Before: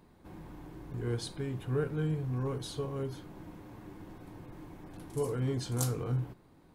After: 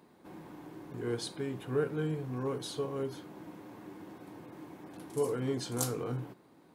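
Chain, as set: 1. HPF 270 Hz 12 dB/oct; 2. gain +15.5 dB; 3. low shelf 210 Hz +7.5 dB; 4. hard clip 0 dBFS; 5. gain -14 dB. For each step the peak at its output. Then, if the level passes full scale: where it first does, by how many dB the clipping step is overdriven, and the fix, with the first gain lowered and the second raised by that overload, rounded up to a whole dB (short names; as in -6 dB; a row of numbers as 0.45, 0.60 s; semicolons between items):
-17.5, -2.0, -2.0, -2.0, -16.0 dBFS; no overload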